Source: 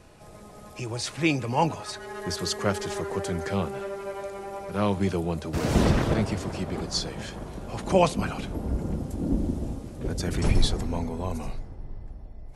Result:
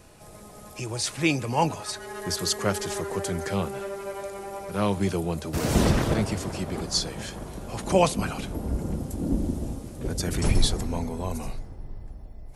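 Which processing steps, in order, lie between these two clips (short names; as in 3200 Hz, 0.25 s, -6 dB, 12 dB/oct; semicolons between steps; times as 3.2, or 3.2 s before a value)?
high shelf 7700 Hz +11.5 dB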